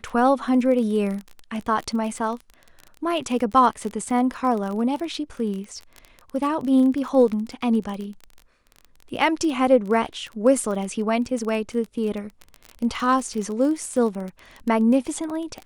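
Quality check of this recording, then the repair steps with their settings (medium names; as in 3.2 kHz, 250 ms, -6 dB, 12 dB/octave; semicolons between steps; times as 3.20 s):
crackle 26 per s -28 dBFS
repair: de-click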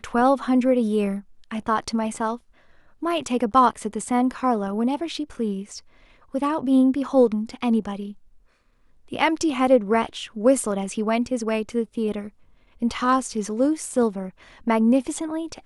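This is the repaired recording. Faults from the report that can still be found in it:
nothing left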